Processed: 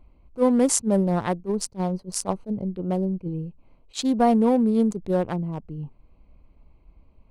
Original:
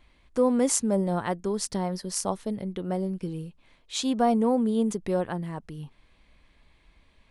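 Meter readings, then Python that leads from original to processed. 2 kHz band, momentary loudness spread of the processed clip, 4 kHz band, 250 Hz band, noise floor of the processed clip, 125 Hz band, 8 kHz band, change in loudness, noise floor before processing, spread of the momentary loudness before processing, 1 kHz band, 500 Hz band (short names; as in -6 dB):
+1.0 dB, 16 LU, -0.5 dB, +4.0 dB, -57 dBFS, +4.5 dB, +2.0 dB, +3.5 dB, -62 dBFS, 14 LU, +2.5 dB, +2.5 dB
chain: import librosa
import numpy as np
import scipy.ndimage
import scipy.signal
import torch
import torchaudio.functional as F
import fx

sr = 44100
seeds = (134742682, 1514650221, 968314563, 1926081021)

y = fx.wiener(x, sr, points=25)
y = fx.low_shelf(y, sr, hz=140.0, db=4.5)
y = fx.attack_slew(y, sr, db_per_s=400.0)
y = y * 10.0 ** (3.5 / 20.0)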